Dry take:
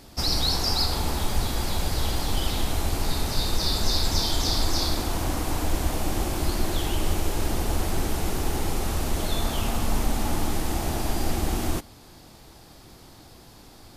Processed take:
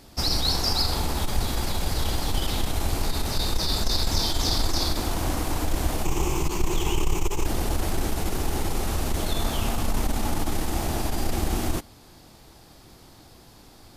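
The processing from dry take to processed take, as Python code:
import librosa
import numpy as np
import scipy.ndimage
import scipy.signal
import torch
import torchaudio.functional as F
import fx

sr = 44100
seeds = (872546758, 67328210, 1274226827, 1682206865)

p1 = fx.ripple_eq(x, sr, per_octave=0.73, db=11, at=(6.05, 7.46))
p2 = np.sign(p1) * np.maximum(np.abs(p1) - 10.0 ** (-40.5 / 20.0), 0.0)
p3 = p1 + (p2 * 10.0 ** (-8.5 / 20.0))
p4 = fx.transformer_sat(p3, sr, knee_hz=59.0)
y = p4 * 10.0 ** (-1.5 / 20.0)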